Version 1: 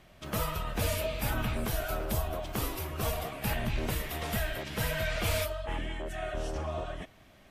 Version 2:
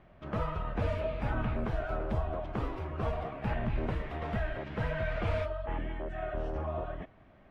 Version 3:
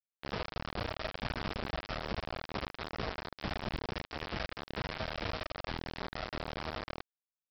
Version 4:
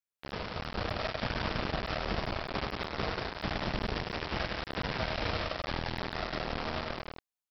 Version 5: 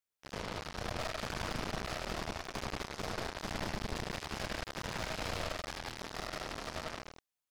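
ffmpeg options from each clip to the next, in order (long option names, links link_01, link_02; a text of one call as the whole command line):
ffmpeg -i in.wav -af "lowpass=1600" out.wav
ffmpeg -i in.wav -af "acompressor=threshold=-39dB:ratio=4,aresample=11025,acrusher=bits=5:mix=0:aa=0.000001,aresample=44100,volume=2dB" out.wav
ffmpeg -i in.wav -filter_complex "[0:a]dynaudnorm=framelen=170:gausssize=9:maxgain=4dB,asplit=2[link_01][link_02];[link_02]aecho=0:1:99.13|180.8:0.501|0.562[link_03];[link_01][link_03]amix=inputs=2:normalize=0,volume=-1dB" out.wav
ffmpeg -i in.wav -af "aeval=exprs='(tanh(79.4*val(0)+0.65)-tanh(0.65))/79.4':channel_layout=same,volume=5dB" out.wav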